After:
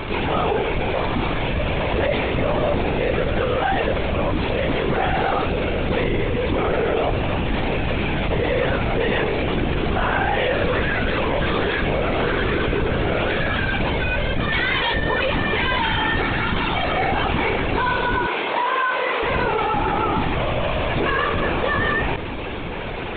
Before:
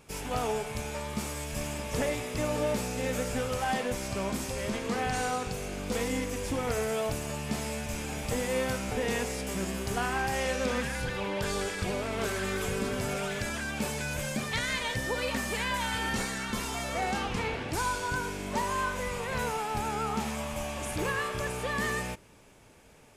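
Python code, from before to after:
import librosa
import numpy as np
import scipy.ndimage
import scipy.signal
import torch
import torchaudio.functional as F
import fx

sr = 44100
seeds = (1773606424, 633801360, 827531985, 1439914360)

y = fx.lpc_vocoder(x, sr, seeds[0], excitation='whisper', order=16)
y = fx.highpass(y, sr, hz=550.0, slope=12, at=(18.26, 19.23))
y = fx.env_flatten(y, sr, amount_pct=70)
y = y * 10.0 ** (7.5 / 20.0)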